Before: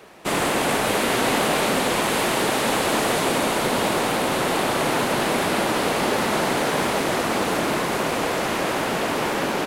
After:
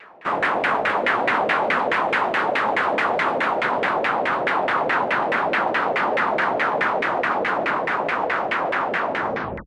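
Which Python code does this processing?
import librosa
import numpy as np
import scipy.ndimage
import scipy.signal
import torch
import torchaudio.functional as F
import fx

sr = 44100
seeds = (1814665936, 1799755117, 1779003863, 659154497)

y = fx.tape_stop_end(x, sr, length_s=0.59)
y = fx.tilt_shelf(y, sr, db=-7.5, hz=1300.0)
y = fx.filter_lfo_lowpass(y, sr, shape='saw_down', hz=4.7, low_hz=510.0, high_hz=2100.0, q=3.1)
y = fx.low_shelf(y, sr, hz=86.0, db=-7.5)
y = fx.vibrato_shape(y, sr, shape='saw_down', rate_hz=6.7, depth_cents=100.0)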